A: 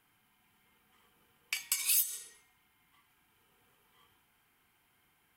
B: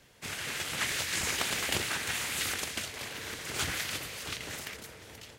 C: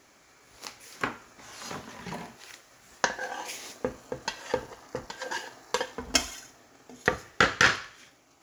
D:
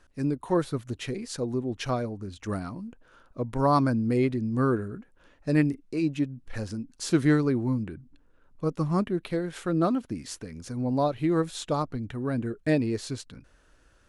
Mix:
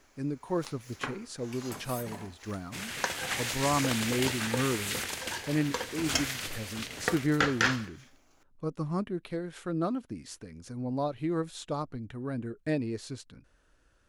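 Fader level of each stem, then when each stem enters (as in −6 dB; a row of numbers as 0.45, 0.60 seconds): −15.5, −1.5, −5.5, −6.0 decibels; 0.00, 2.50, 0.00, 0.00 seconds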